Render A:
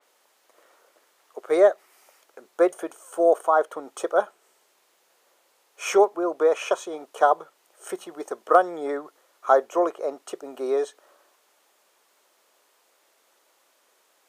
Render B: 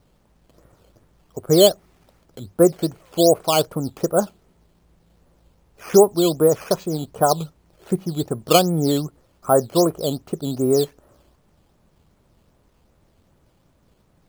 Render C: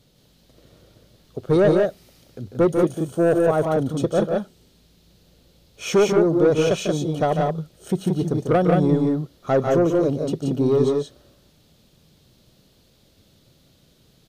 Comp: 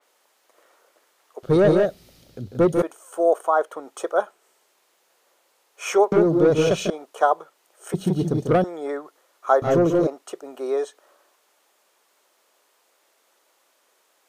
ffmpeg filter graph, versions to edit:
-filter_complex "[2:a]asplit=4[s0][s1][s2][s3];[0:a]asplit=5[s4][s5][s6][s7][s8];[s4]atrim=end=1.432[s9];[s0]atrim=start=1.428:end=2.822[s10];[s5]atrim=start=2.818:end=6.122[s11];[s1]atrim=start=6.118:end=6.902[s12];[s6]atrim=start=6.898:end=7.942[s13];[s2]atrim=start=7.938:end=8.642[s14];[s7]atrim=start=8.638:end=9.622[s15];[s3]atrim=start=9.618:end=10.072[s16];[s8]atrim=start=10.068[s17];[s9][s10]acrossfade=d=0.004:c1=hsin:c2=hsin[s18];[s18][s11]acrossfade=d=0.004:c1=hsin:c2=hsin[s19];[s19][s12]acrossfade=d=0.004:c1=hsin:c2=hsin[s20];[s20][s13]acrossfade=d=0.004:c1=hsin:c2=hsin[s21];[s21][s14]acrossfade=d=0.004:c1=hsin:c2=hsin[s22];[s22][s15]acrossfade=d=0.004:c1=hsin:c2=hsin[s23];[s23][s16]acrossfade=d=0.004:c1=hsin:c2=hsin[s24];[s24][s17]acrossfade=d=0.004:c1=hsin:c2=hsin"

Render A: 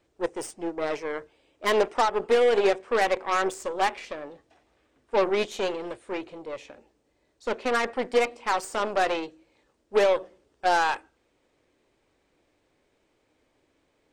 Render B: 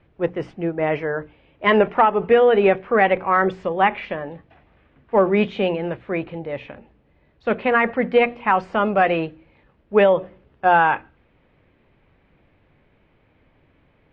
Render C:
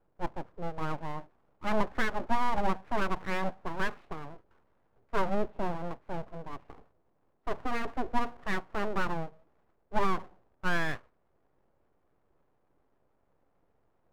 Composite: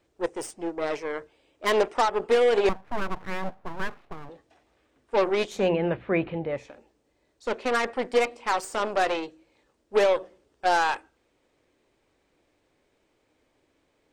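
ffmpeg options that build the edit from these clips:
-filter_complex "[0:a]asplit=3[s0][s1][s2];[s0]atrim=end=2.692[s3];[2:a]atrim=start=2.688:end=4.292[s4];[s1]atrim=start=4.288:end=5.74[s5];[1:a]atrim=start=5.5:end=6.7[s6];[s2]atrim=start=6.46[s7];[s3][s4]acrossfade=d=0.004:c1=hsin:c2=hsin[s8];[s8][s5]acrossfade=d=0.004:c1=hsin:c2=hsin[s9];[s9][s6]acrossfade=d=0.24:c1=tri:c2=tri[s10];[s10][s7]acrossfade=d=0.24:c1=tri:c2=tri"

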